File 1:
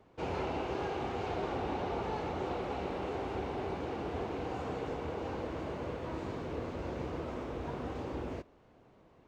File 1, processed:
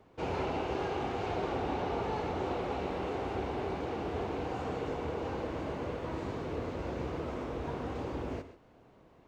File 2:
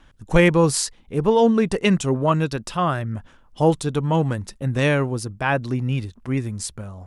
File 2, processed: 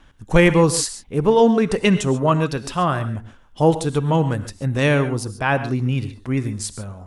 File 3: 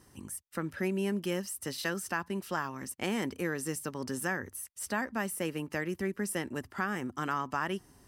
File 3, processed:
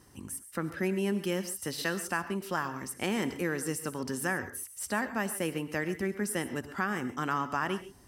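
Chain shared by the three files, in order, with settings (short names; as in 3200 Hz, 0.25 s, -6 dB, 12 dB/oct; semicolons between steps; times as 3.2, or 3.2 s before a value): non-linear reverb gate 0.16 s rising, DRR 11.5 dB; gain +1.5 dB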